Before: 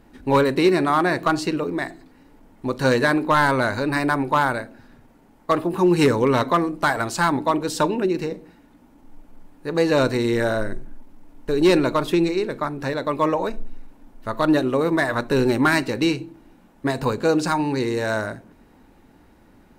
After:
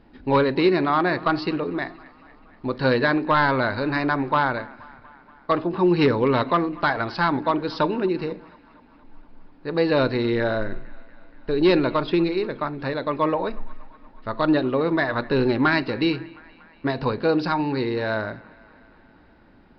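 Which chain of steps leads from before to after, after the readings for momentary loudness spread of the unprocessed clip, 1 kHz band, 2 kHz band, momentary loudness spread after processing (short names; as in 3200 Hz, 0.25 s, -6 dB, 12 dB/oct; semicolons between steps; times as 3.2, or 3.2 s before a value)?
12 LU, -1.5 dB, -1.5 dB, 13 LU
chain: on a send: band-limited delay 0.238 s, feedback 67%, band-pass 1500 Hz, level -21 dB; on the sum: downsampling 11025 Hz; gain -1.5 dB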